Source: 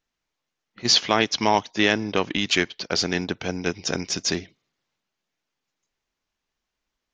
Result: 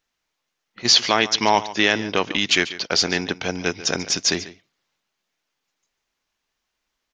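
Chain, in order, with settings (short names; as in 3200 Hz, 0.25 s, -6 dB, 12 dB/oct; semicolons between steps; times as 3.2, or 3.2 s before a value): low shelf 440 Hz -6.5 dB; in parallel at -1.5 dB: limiter -12.5 dBFS, peak gain reduction 7.5 dB; on the sum: echo 0.142 s -16 dB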